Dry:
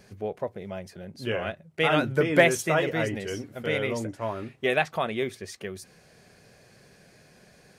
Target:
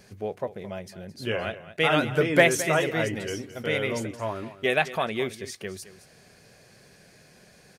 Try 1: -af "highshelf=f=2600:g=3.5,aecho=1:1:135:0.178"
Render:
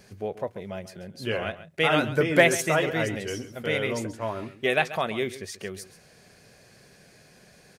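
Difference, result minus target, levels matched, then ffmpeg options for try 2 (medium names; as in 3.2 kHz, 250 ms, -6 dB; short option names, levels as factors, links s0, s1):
echo 82 ms early
-af "highshelf=f=2600:g=3.5,aecho=1:1:217:0.178"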